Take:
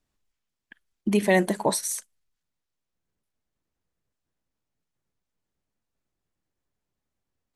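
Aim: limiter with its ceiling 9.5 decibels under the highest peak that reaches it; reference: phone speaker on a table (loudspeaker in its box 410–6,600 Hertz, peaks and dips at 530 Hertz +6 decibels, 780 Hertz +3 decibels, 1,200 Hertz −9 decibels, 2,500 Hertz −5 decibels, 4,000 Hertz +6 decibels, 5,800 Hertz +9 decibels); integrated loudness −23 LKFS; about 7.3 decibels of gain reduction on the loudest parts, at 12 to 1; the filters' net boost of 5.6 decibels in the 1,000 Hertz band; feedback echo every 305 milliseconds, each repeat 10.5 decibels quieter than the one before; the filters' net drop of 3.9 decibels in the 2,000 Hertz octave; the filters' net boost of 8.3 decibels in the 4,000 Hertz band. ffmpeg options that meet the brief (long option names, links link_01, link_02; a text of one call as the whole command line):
ffmpeg -i in.wav -af "equalizer=frequency=1000:width_type=o:gain=6.5,equalizer=frequency=2000:width_type=o:gain=-5,equalizer=frequency=4000:width_type=o:gain=4.5,acompressor=threshold=-21dB:ratio=12,alimiter=limit=-21dB:level=0:latency=1,highpass=frequency=410:width=0.5412,highpass=frequency=410:width=1.3066,equalizer=frequency=530:width_type=q:width=4:gain=6,equalizer=frequency=780:width_type=q:width=4:gain=3,equalizer=frequency=1200:width_type=q:width=4:gain=-9,equalizer=frequency=2500:width_type=q:width=4:gain=-5,equalizer=frequency=4000:width_type=q:width=4:gain=6,equalizer=frequency=5800:width_type=q:width=4:gain=9,lowpass=frequency=6600:width=0.5412,lowpass=frequency=6600:width=1.3066,aecho=1:1:305|610|915:0.299|0.0896|0.0269,volume=9dB" out.wav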